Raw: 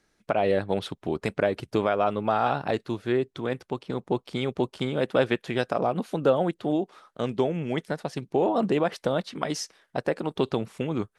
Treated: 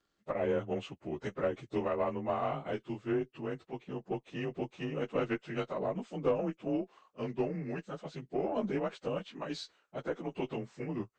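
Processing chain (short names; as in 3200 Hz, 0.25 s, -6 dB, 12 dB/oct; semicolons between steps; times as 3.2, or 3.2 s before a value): inharmonic rescaling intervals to 91%; added harmonics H 2 -15 dB, 4 -29 dB, 6 -34 dB, 7 -37 dB, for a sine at -11.5 dBFS; gain -6.5 dB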